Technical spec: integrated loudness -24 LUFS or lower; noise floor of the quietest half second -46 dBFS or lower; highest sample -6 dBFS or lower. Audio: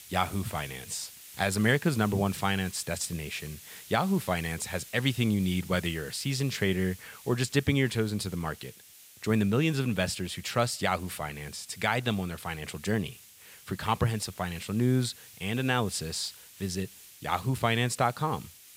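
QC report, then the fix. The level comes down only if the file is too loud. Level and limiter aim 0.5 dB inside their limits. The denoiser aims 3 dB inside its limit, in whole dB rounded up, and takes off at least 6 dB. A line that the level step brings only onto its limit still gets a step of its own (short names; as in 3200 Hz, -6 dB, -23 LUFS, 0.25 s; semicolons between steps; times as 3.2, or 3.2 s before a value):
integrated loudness -30.0 LUFS: OK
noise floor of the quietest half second -53 dBFS: OK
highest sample -11.0 dBFS: OK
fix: none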